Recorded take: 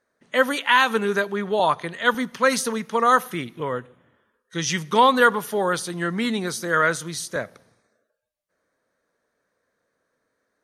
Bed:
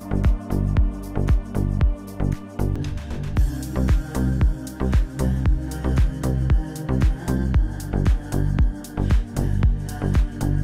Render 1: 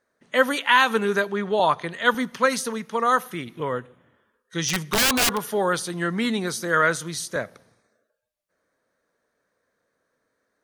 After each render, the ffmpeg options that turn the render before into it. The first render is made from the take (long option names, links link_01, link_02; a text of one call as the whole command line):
ffmpeg -i in.wav -filter_complex "[0:a]asettb=1/sr,asplit=3[link_01][link_02][link_03];[link_01]atrim=end=1.294[link_04];[link_02]atrim=start=1.29:end=1.9,asetpts=PTS-STARTPTS,afade=type=in:duration=0.004:curve=qsin,afade=type=out:start_time=0.606:duration=0.004:curve=qsin,lowpass=9200[link_05];[link_03]atrim=start=1.896[link_06];[link_04][link_05]acrossfade=duration=0.004:curve1=hsin:curve2=qsin[link_07];[link_07][link_06]acrossfade=duration=0.004:curve1=qsin:curve2=hsin,asplit=3[link_08][link_09][link_10];[link_08]afade=type=out:start_time=4.68:duration=0.02[link_11];[link_09]aeval=exprs='(mod(5.31*val(0)+1,2)-1)/5.31':channel_layout=same,afade=type=in:start_time=4.68:duration=0.02,afade=type=out:start_time=5.36:duration=0.02[link_12];[link_10]afade=type=in:start_time=5.36:duration=0.02[link_13];[link_11][link_12][link_13]amix=inputs=3:normalize=0,asplit=3[link_14][link_15][link_16];[link_14]atrim=end=2.462[link_17];[link_15]atrim=start=2.458:end=3.472,asetpts=PTS-STARTPTS,volume=-3dB[link_18];[link_16]atrim=start=3.468[link_19];[link_17][link_18]acrossfade=duration=0.004:curve1=hsin:curve2=hsin[link_20];[link_20][link_19]acrossfade=duration=0.004:curve1=hsin:curve2=hsin" out.wav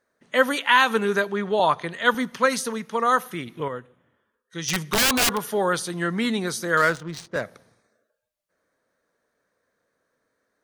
ffmpeg -i in.wav -filter_complex "[0:a]asettb=1/sr,asplit=3[link_01][link_02][link_03];[link_01]atrim=end=6.774[link_04];[link_02]atrim=start=6.77:end=7.42,asetpts=PTS-STARTPTS,afade=type=in:duration=0.004:curve=qsin,afade=type=out:start_time=0.646:duration=0.004:curve=qsin,adynamicsmooth=sensitivity=5:basefreq=970[link_05];[link_03]atrim=start=7.416[link_06];[link_04][link_05]acrossfade=duration=0.004:curve1=hsin:curve2=qsin[link_07];[link_07][link_06]acrossfade=duration=0.004:curve1=qsin:curve2=hsin,asplit=3[link_08][link_09][link_10];[link_08]atrim=end=3.682[link_11];[link_09]atrim=start=3.678:end=4.682,asetpts=PTS-STARTPTS,volume=-5.5dB[link_12];[link_10]atrim=start=4.678[link_13];[link_11][link_12]acrossfade=duration=0.004:curve1=hsin:curve2=hsin[link_14];[link_14][link_13]acrossfade=duration=0.004:curve1=hsin:curve2=hsin" out.wav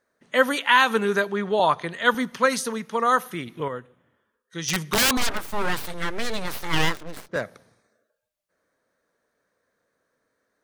ffmpeg -i in.wav -filter_complex "[0:a]asettb=1/sr,asplit=3[link_01][link_02][link_03];[link_01]atrim=end=5.174[link_04];[link_02]atrim=start=5.17:end=7.29,asetpts=PTS-STARTPTS,afade=type=in:duration=0.004:curve=qsin,afade=type=out:start_time=2.116:duration=0.004:curve=qsin,aeval=exprs='abs(val(0))':channel_layout=same[link_05];[link_03]atrim=start=7.286[link_06];[link_04][link_05]acrossfade=duration=0.004:curve1=hsin:curve2=qsin[link_07];[link_07][link_06]acrossfade=duration=0.004:curve1=qsin:curve2=hsin" out.wav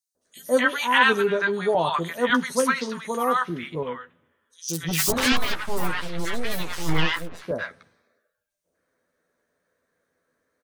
ffmpeg -i in.wav -filter_complex "[0:a]asplit=2[link_01][link_02];[link_02]adelay=12,volume=-6.5dB[link_03];[link_01][link_03]amix=inputs=2:normalize=0,acrossover=split=930|4800[link_04][link_05][link_06];[link_04]adelay=150[link_07];[link_05]adelay=250[link_08];[link_07][link_08][link_06]amix=inputs=3:normalize=0" out.wav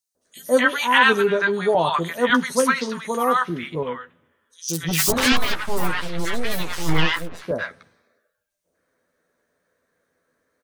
ffmpeg -i in.wav -af "volume=3dB,alimiter=limit=-3dB:level=0:latency=1" out.wav